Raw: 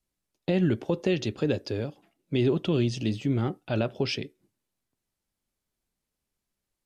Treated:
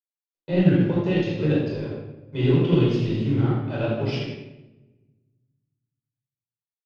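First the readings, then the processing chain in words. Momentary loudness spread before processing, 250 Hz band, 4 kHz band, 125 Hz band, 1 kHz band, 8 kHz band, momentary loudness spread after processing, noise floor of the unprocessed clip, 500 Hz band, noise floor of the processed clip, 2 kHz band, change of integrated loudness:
8 LU, +5.5 dB, 0.0 dB, +7.0 dB, +3.5 dB, no reading, 14 LU, -85 dBFS, +3.5 dB, under -85 dBFS, +3.0 dB, +5.5 dB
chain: companding laws mixed up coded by A; low-pass 4.2 kHz 12 dB/octave; on a send: delay 85 ms -8.5 dB; on the sum: simulated room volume 970 m³, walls mixed, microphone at 4.9 m; upward expansion 1.5:1, over -36 dBFS; trim -3 dB

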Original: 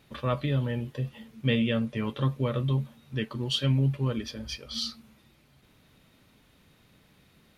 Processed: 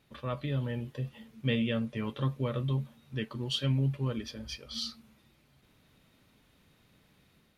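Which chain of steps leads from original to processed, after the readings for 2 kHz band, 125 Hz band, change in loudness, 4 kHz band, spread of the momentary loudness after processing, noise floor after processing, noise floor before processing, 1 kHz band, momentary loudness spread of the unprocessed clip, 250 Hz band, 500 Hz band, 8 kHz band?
-4.0 dB, -4.0 dB, -4.0 dB, -4.0 dB, 10 LU, -67 dBFS, -62 dBFS, -5.0 dB, 10 LU, -4.0 dB, -4.5 dB, -4.0 dB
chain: level rider gain up to 3.5 dB; trim -7.5 dB

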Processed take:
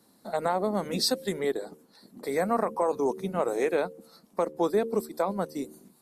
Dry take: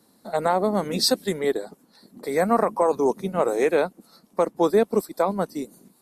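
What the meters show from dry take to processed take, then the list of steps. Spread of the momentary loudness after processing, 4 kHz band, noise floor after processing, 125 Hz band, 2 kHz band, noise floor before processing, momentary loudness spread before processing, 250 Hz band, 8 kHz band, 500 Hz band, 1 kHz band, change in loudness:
10 LU, -5.0 dB, -62 dBFS, -5.0 dB, -5.0 dB, -61 dBFS, 10 LU, -5.5 dB, -5.0 dB, -5.5 dB, -5.5 dB, -5.5 dB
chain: de-hum 75.8 Hz, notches 7; in parallel at +1 dB: compression, threshold -26 dBFS, peak gain reduction 12 dB; on the sum: trim -8.5 dB

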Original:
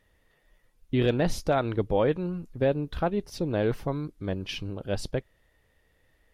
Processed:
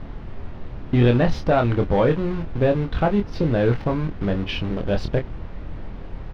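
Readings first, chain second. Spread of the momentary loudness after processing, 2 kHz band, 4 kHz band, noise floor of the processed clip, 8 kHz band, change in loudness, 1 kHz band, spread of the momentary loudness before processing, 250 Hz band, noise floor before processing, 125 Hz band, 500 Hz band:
19 LU, +7.0 dB, +4.0 dB, -35 dBFS, no reading, +7.0 dB, +6.5 dB, 9 LU, +7.5 dB, -68 dBFS, +9.5 dB, +5.5 dB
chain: dynamic bell 400 Hz, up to -4 dB, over -34 dBFS, Q 1; in parallel at -4.5 dB: word length cut 6-bit, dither none; on the sum: added noise brown -37 dBFS; saturation -16.5 dBFS, distortion -16 dB; distance through air 270 m; doubling 25 ms -6 dB; trim +6.5 dB

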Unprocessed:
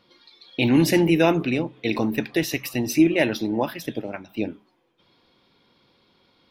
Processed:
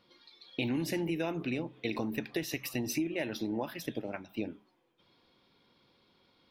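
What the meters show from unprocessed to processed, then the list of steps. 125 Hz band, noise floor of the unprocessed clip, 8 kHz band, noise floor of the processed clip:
-13.0 dB, -63 dBFS, -9.5 dB, -69 dBFS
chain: compression 6:1, threshold -24 dBFS, peak gain reduction 12 dB; trim -6 dB

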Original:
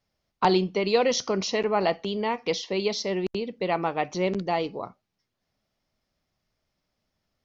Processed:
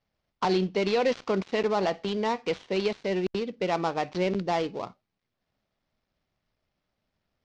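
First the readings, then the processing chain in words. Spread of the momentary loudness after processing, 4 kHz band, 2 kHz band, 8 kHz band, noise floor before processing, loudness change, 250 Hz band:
5 LU, -4.5 dB, -2.0 dB, no reading, -81 dBFS, -2.0 dB, -1.0 dB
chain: dead-time distortion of 0.12 ms; low-pass 5.5 kHz 24 dB/octave; peak limiter -15.5 dBFS, peak gain reduction 6.5 dB

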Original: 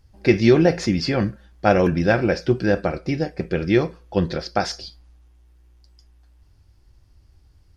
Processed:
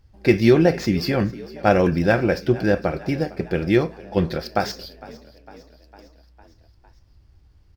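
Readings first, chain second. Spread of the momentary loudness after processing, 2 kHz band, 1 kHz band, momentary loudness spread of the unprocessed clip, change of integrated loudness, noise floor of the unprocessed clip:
10 LU, 0.0 dB, 0.0 dB, 10 LU, 0.0 dB, -56 dBFS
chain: median filter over 5 samples; frequency-shifting echo 455 ms, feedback 62%, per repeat +30 Hz, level -20 dB

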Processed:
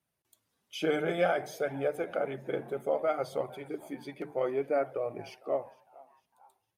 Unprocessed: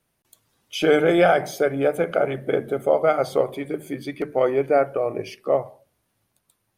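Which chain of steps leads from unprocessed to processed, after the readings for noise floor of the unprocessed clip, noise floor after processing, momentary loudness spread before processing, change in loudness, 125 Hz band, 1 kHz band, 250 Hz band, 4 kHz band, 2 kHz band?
-74 dBFS, -83 dBFS, 13 LU, -11.0 dB, -11.5 dB, -11.0 dB, -12.0 dB, -10.5 dB, -10.5 dB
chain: on a send: frequency-shifting echo 455 ms, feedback 42%, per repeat +130 Hz, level -23 dB; on the sum: flange 0.58 Hz, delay 0.9 ms, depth 5.3 ms, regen -41%; high-pass 68 Hz; trim -7 dB

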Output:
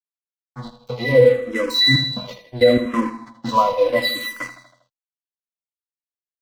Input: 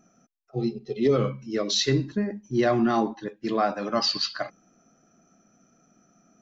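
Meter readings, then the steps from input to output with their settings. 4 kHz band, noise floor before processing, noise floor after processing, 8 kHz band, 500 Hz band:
+8.5 dB, -64 dBFS, under -85 dBFS, no reading, +9.0 dB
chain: high-pass 750 Hz 6 dB/octave; in parallel at +0.5 dB: compression, threshold -37 dBFS, peak gain reduction 15 dB; on the sum: pitch-class resonator B, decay 0.26 s; trance gate "x.x..xxxxxxx.xx." 92 bpm -12 dB; crossover distortion -59 dBFS; on a send: feedback delay 80 ms, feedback 51%, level -11.5 dB; on the sum: loudness maximiser +33.5 dB; barber-pole phaser -0.73 Hz; trim -1 dB

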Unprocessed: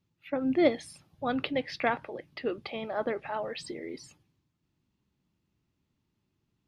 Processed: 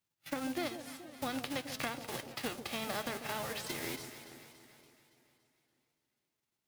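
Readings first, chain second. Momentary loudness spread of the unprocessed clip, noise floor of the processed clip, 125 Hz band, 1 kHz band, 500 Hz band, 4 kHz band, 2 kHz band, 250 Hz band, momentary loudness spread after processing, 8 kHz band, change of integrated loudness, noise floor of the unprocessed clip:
15 LU, under -85 dBFS, -1.0 dB, -6.5 dB, -11.0 dB, +0.5 dB, -4.0 dB, -9.0 dB, 12 LU, +7.5 dB, -7.5 dB, -80 dBFS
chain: formants flattened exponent 0.3; gate -52 dBFS, range -11 dB; compression 12:1, threshold -34 dBFS, peak gain reduction 17 dB; echo whose repeats swap between lows and highs 142 ms, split 820 Hz, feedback 72%, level -9 dB; modulated delay 471 ms, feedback 39%, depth 202 cents, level -20 dB

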